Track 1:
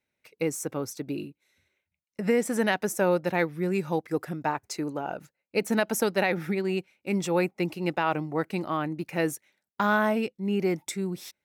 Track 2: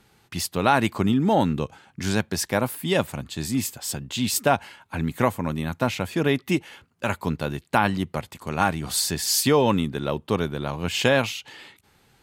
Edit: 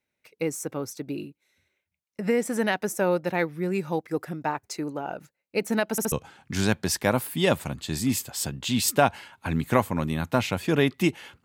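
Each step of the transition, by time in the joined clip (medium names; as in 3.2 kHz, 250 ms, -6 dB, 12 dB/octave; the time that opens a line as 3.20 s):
track 1
5.91 s: stutter in place 0.07 s, 3 plays
6.12 s: go over to track 2 from 1.60 s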